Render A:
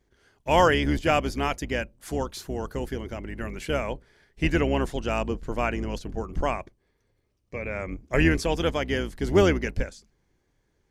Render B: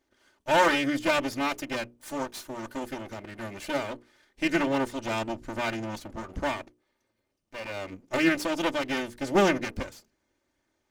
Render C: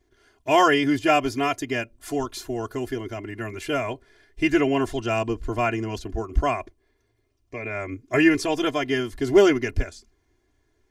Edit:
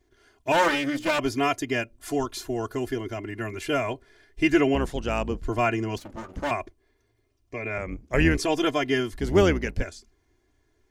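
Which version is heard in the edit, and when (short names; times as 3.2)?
C
0.52–1.19 from B
4.75–5.42 from A
5.98–6.51 from B
7.78–8.38 from A
9.2–9.82 from A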